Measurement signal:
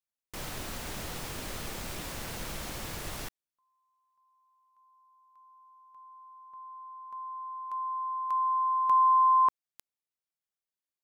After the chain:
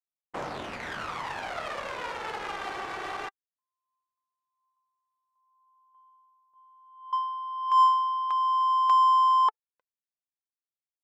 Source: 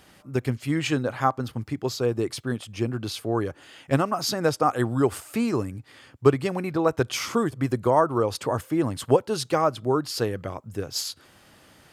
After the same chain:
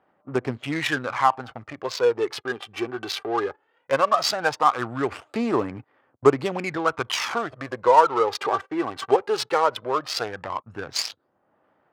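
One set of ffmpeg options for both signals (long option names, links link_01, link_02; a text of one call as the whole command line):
ffmpeg -i in.wav -filter_complex "[0:a]agate=range=-18dB:threshold=-45dB:ratio=16:release=107:detection=peak,asplit=2[link_01][link_02];[link_02]acompressor=threshold=-33dB:ratio=6:attack=1.8:release=56:knee=1:detection=peak,volume=3dB[link_03];[link_01][link_03]amix=inputs=2:normalize=0,aphaser=in_gain=1:out_gain=1:delay=2.6:decay=0.59:speed=0.17:type=sinusoidal,adynamicsmooth=sensitivity=3:basefreq=940,crystalizer=i=7:c=0,bandpass=frequency=910:width_type=q:width=0.84:csg=0,volume=-1dB" out.wav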